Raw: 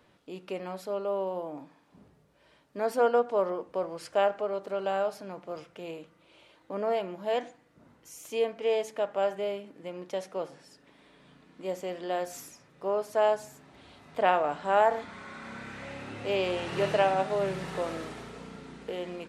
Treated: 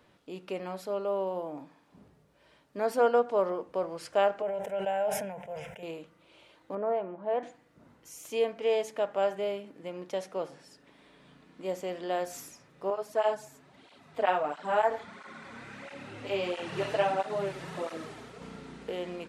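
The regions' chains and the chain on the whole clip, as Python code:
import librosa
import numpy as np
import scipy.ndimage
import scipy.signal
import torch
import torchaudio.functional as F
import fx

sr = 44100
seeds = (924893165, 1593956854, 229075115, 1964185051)

y = fx.chain(x, sr, fx.fixed_phaser(hz=1200.0, stages=6),
    fx.sustainer(db_per_s=48.0), at=(4.42, 5.83))
y = fx.chain(y, sr, fx.lowpass(hz=1300.0, slope=12),
    fx.low_shelf(hz=200.0, db=-7.0), at=(6.75, 7.43))
y = fx.chain(y, sr, fx.low_shelf(hz=61.0, db=-11.5),
    fx.flanger_cancel(hz=1.5, depth_ms=6.0), at=(12.9, 18.42))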